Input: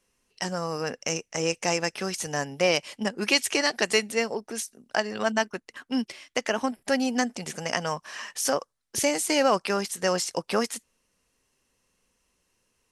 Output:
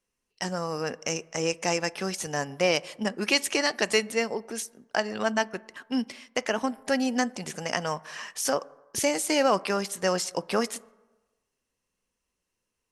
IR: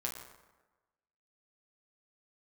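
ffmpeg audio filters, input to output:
-filter_complex "[0:a]agate=range=-9dB:threshold=-51dB:ratio=16:detection=peak,asplit=2[a][b];[1:a]atrim=start_sample=2205,lowpass=5.1k,highshelf=f=3.3k:g=-10[c];[b][c]afir=irnorm=-1:irlink=0,volume=-16dB[d];[a][d]amix=inputs=2:normalize=0,volume=-1.5dB"

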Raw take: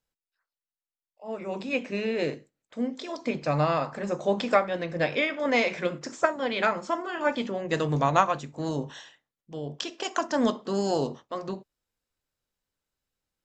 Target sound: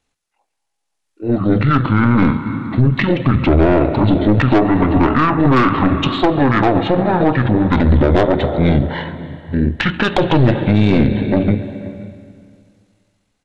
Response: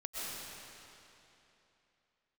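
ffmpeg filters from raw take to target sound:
-filter_complex "[0:a]dynaudnorm=f=850:g=3:m=7dB,asetrate=23361,aresample=44100,atempo=1.88775,asplit=2[a][b];[b]adelay=524.8,volume=-21dB,highshelf=f=4k:g=-11.8[c];[a][c]amix=inputs=2:normalize=0,asplit=2[d][e];[1:a]atrim=start_sample=2205,asetrate=61740,aresample=44100,adelay=135[f];[e][f]afir=irnorm=-1:irlink=0,volume=-14dB[g];[d][g]amix=inputs=2:normalize=0,aeval=exprs='(tanh(7.08*val(0)+0.6)-tanh(0.6))/7.08':c=same,alimiter=level_in=20dB:limit=-1dB:release=50:level=0:latency=1,volume=-2.5dB"

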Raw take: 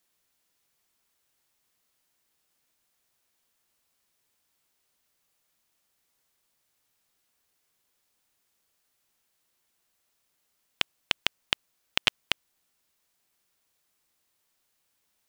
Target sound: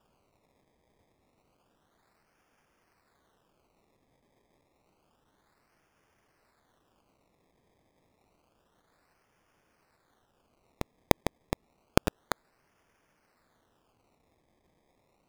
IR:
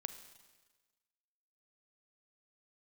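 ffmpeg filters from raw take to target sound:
-af "highshelf=f=3k:t=q:w=3:g=9.5,acrusher=samples=21:mix=1:aa=0.000001:lfo=1:lforange=21:lforate=0.29,volume=-6dB"

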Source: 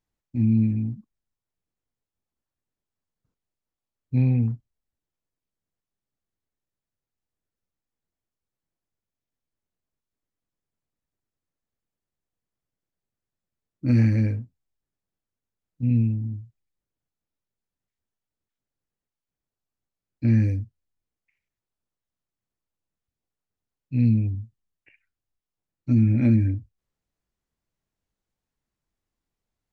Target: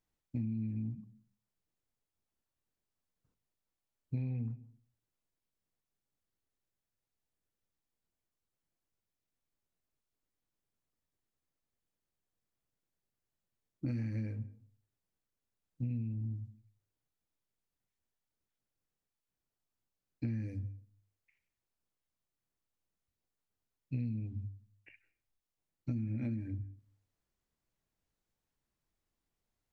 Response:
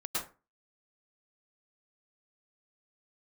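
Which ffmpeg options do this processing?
-filter_complex "[0:a]bandreject=f=50:t=h:w=6,bandreject=f=100:t=h:w=6,bandreject=f=150:t=h:w=6,bandreject=f=200:t=h:w=6,bandreject=f=250:t=h:w=6,acompressor=threshold=-32dB:ratio=10,asplit=2[a][b];[1:a]atrim=start_sample=2205,asetrate=29106,aresample=44100[c];[b][c]afir=irnorm=-1:irlink=0,volume=-27.5dB[d];[a][d]amix=inputs=2:normalize=0,volume=-2dB"

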